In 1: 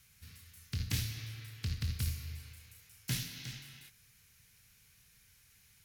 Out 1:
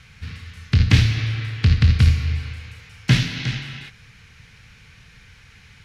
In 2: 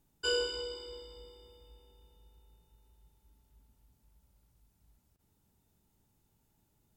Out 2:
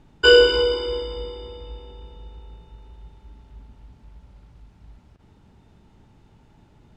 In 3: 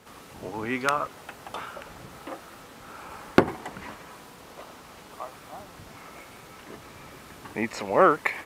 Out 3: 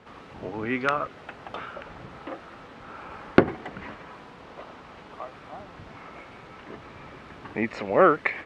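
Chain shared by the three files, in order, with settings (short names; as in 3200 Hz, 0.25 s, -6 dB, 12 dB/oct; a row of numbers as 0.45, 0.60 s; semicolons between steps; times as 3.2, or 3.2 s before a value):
LPF 3000 Hz 12 dB/oct; dynamic EQ 940 Hz, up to -7 dB, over -46 dBFS, Q 2.8; normalise peaks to -1.5 dBFS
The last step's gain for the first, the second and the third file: +21.5, +21.0, +2.0 dB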